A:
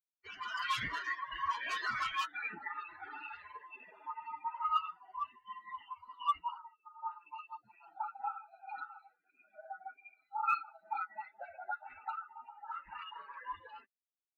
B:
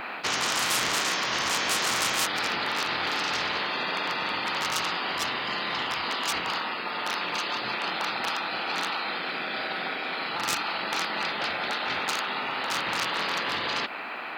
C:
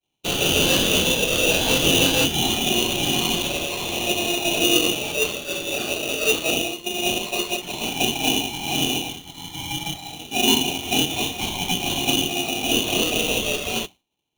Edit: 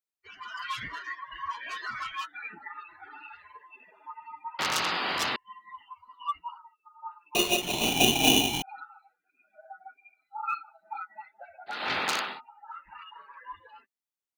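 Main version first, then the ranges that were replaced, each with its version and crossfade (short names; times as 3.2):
A
4.59–5.36 from B
7.35–8.62 from C
11.78–12.29 from B, crossfade 0.24 s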